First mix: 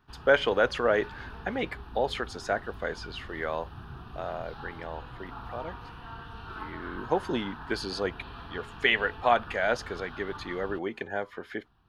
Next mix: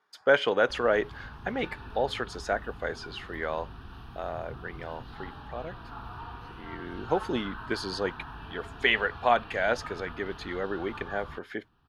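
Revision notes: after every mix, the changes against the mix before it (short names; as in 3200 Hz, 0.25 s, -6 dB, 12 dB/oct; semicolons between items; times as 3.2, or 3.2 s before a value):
background: entry +0.60 s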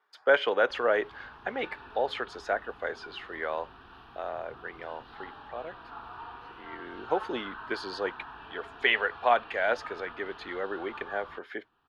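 master: add three-band isolator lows -15 dB, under 310 Hz, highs -12 dB, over 4300 Hz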